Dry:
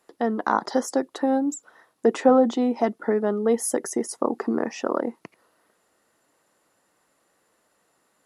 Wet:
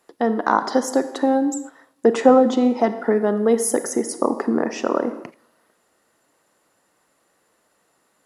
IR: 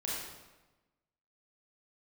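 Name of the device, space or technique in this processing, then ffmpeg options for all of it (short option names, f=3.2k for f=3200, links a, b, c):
keyed gated reverb: -filter_complex "[0:a]asettb=1/sr,asplit=3[a][b][c];[a]atrim=end=3.024[d];[b]atrim=start=3.02:end=3.59,asetpts=PTS-STARTPTS,afade=t=in:d=0.004:c=qsin,afade=t=out:st=0.566:d=0.004:c=qsin,highshelf=f=9.3k:g=5.5[e];[c]atrim=start=3.586[f];[d][e]acrossfade=d=0.004:c1=hsin:c2=qsin[g];[g][f]acrossfade=d=0.004:c1=qsin:c2=hsin,asplit=3[h][i][j];[1:a]atrim=start_sample=2205[k];[i][k]afir=irnorm=-1:irlink=0[l];[j]apad=whole_len=364198[m];[l][m]sidechaingate=range=-17dB:threshold=-44dB:ratio=16:detection=peak,volume=-11.5dB[n];[h][n]amix=inputs=2:normalize=0,volume=2.5dB"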